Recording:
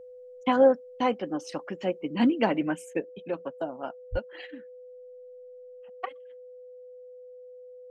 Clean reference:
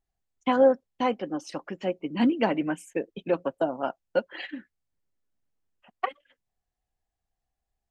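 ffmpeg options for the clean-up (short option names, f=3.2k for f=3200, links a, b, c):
-filter_complex "[0:a]bandreject=f=500:w=30,asplit=3[a][b][c];[a]afade=t=out:st=4.11:d=0.02[d];[b]highpass=f=140:w=0.5412,highpass=f=140:w=1.3066,afade=t=in:st=4.11:d=0.02,afade=t=out:st=4.23:d=0.02[e];[c]afade=t=in:st=4.23:d=0.02[f];[d][e][f]amix=inputs=3:normalize=0,asetnsamples=n=441:p=0,asendcmd='3 volume volume 6.5dB',volume=0dB"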